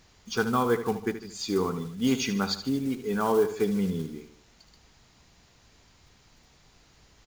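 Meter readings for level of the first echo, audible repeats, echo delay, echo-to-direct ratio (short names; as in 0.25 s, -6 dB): -11.5 dB, 3, 75 ms, -10.5 dB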